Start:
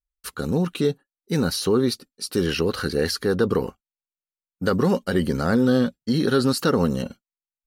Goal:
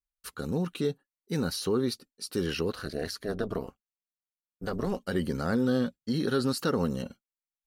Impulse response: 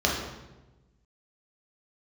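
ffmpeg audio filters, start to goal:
-filter_complex "[0:a]asettb=1/sr,asplit=3[a][b][c];[a]atrim=end=2.724[d];[b]atrim=start=2.72:end=5,asetpts=PTS-STARTPTS,afade=t=in:d=0.004:c=qsin,afade=t=out:st=2.276:d=0.004:c=qsin,tremolo=f=210:d=0.824[e];[c]atrim=start=4.996[f];[d][e]acrossfade=d=0.004:c1=hsin:c2=qsin[g];[g][f]acrossfade=d=0.004:c1=qsin:c2=hsin,volume=-7.5dB"

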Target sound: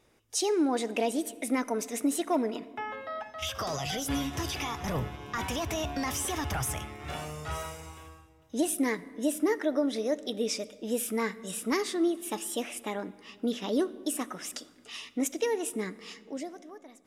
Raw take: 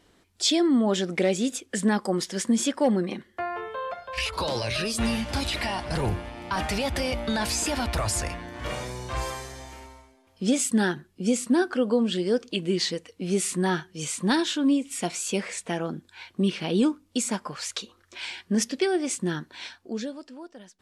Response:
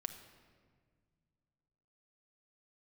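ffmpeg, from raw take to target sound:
-filter_complex "[0:a]bandreject=f=3.5k:w=5.5,asetrate=53802,aresample=44100,asplit=2[a][b];[1:a]atrim=start_sample=2205,asetrate=37926,aresample=44100[c];[b][c]afir=irnorm=-1:irlink=0,volume=-4dB[d];[a][d]amix=inputs=2:normalize=0,volume=-8.5dB"

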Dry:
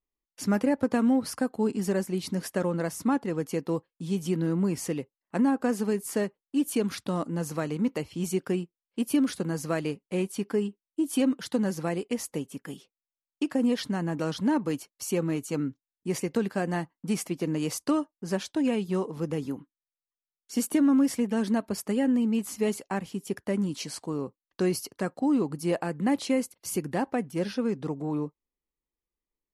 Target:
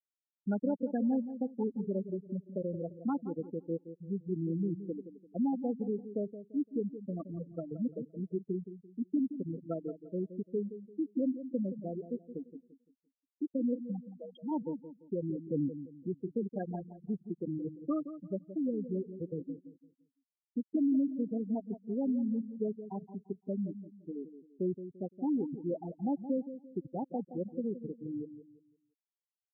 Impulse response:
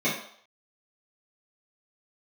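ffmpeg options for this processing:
-filter_complex "[0:a]asplit=3[a][b][c];[a]afade=t=out:st=13.99:d=0.02[d];[b]aemphasis=mode=production:type=riaa,afade=t=in:st=13.99:d=0.02,afade=t=out:st=14.5:d=0.02[e];[c]afade=t=in:st=14.5:d=0.02[f];[d][e][f]amix=inputs=3:normalize=0,asettb=1/sr,asplit=3[g][h][i];[g]atrim=end=15.474[j];[h]atrim=start=15.47:end=16.09,asetpts=PTS-STARTPTS,afade=t=in:d=0.004:c=qsin,afade=t=out:st=0.616:d=0.004:c=qsin,acontrast=21[k];[i]atrim=start=16.086[l];[j][k]acrossfade=d=0.004:c1=hsin:c2=qsin[m];[m][l]acrossfade=d=0.004:c1=qsin:c2=hsin,afftfilt=real='re*gte(hypot(re,im),0.178)':imag='im*gte(hypot(re,im),0.178)':win_size=1024:overlap=0.75,asplit=2[n][o];[o]adelay=171,lowpass=f=920:p=1,volume=-11dB,asplit=2[p][q];[q]adelay=171,lowpass=f=920:p=1,volume=0.34,asplit=2[r][s];[s]adelay=171,lowpass=f=920:p=1,volume=0.34,asplit=2[t][u];[u]adelay=171,lowpass=f=920:p=1,volume=0.34[v];[n][p][r][t][v]amix=inputs=5:normalize=0,volume=-7dB"

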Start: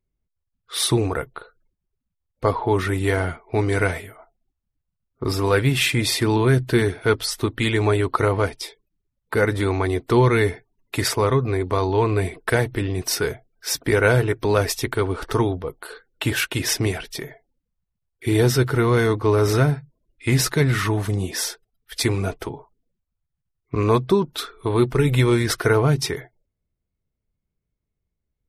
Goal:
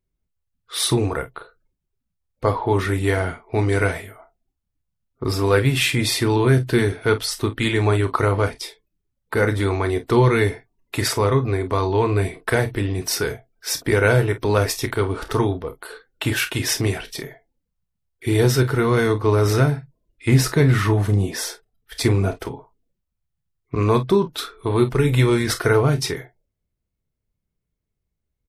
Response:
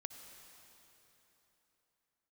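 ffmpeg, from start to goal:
-filter_complex "[0:a]asettb=1/sr,asplit=3[a][b][c];[a]atrim=end=20.284[d];[b]atrim=start=20.28:end=22.32,asetpts=PTS-STARTPTS,afade=t=in:d=0.004:c=qsin,afade=t=out:st=2.036:d=0.004:c=qsin,tiltshelf=f=1.5k:g=3[e];[c]atrim=start=22.316[f];[d][e]acrossfade=d=0.004:c1=hsin:c2=qsin[g];[g][f]acrossfade=d=0.004:c1=qsin:c2=hsin,asplit=2[h][i];[i]aecho=0:1:30|48:0.282|0.188[j];[h][j]amix=inputs=2:normalize=0"

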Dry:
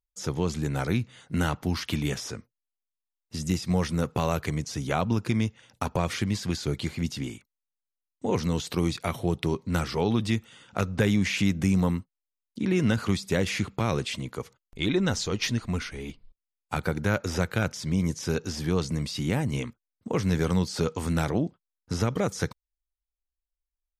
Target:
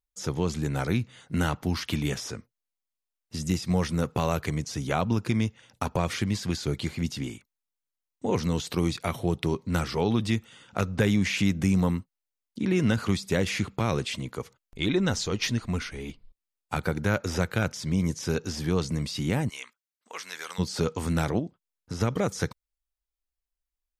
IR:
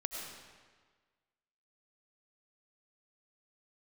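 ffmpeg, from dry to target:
-filter_complex "[0:a]asplit=3[a][b][c];[a]afade=t=out:st=19.48:d=0.02[d];[b]highpass=1.3k,afade=t=in:st=19.48:d=0.02,afade=t=out:st=20.58:d=0.02[e];[c]afade=t=in:st=20.58:d=0.02[f];[d][e][f]amix=inputs=3:normalize=0,asettb=1/sr,asplit=3[g][h][i];[g]atrim=end=21.394[j];[h]atrim=start=21.39:end=22.01,asetpts=PTS-STARTPTS,afade=t=in:d=0.004:c=qsin,afade=t=out:st=0.616:d=0.004:c=qsin,acompressor=threshold=-39dB:ratio=1.5[k];[i]atrim=start=22.006[l];[j][k]acrossfade=d=0.004:c1=hsin:c2=qsin[m];[m][l]acrossfade=d=0.004:c1=qsin:c2=hsin"

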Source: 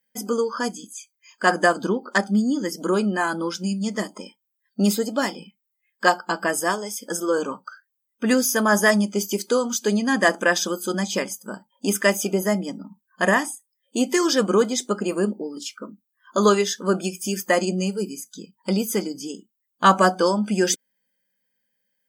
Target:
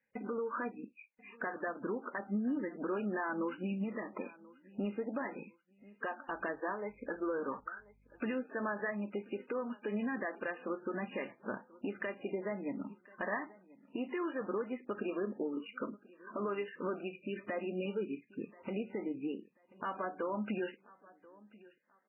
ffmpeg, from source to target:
-filter_complex "[0:a]equalizer=f=180:w=4.1:g=-10.5,acompressor=threshold=-30dB:ratio=16,alimiter=level_in=2.5dB:limit=-24dB:level=0:latency=1:release=67,volume=-2.5dB,asettb=1/sr,asplit=3[a][b][c];[a]atrim=end=6.284[d];[b]atrim=start=6.28:end=8.25,asetpts=PTS-STARTPTS,afade=t=in:d=0.004:c=qsin,afade=t=out:st=1.966:d=0.004:c=qsin,aeval=exprs='val(0)+0.000447*(sin(2*PI*50*n/s)+sin(2*PI*2*50*n/s)/2+sin(2*PI*3*50*n/s)/3+sin(2*PI*4*50*n/s)/4+sin(2*PI*5*50*n/s)/5)':c=same[e];[c]atrim=start=8.246[f];[d][e]acrossfade=d=0.004:c1=hsin:c2=qsin[g];[g][f]acrossfade=d=0.004:c1=qsin:c2=hsin,asplit=2[h][i];[i]aecho=0:1:1035|2070:0.0794|0.023[j];[h][j]amix=inputs=2:normalize=0" -ar 11025 -c:a libmp3lame -b:a 8k

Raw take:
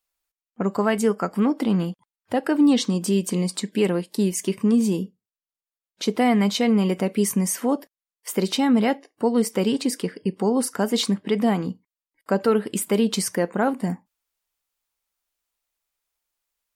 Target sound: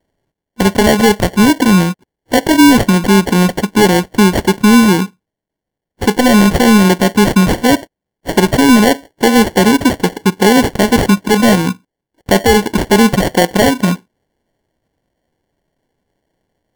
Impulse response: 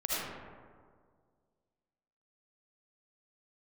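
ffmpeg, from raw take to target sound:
-af "apsyclip=14dB,acrusher=samples=35:mix=1:aa=0.000001,volume=-1.5dB"

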